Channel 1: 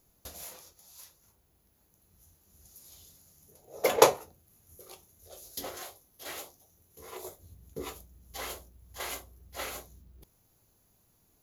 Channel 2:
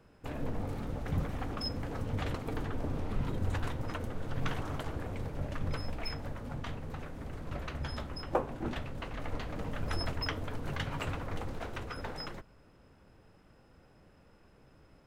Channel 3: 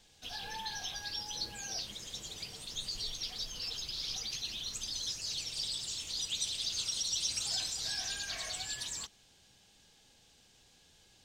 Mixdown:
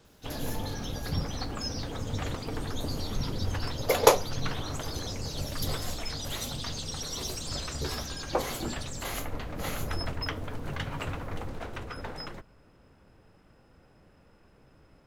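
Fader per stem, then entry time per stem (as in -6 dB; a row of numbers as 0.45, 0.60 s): +0.5, +1.5, -3.5 dB; 0.05, 0.00, 0.00 s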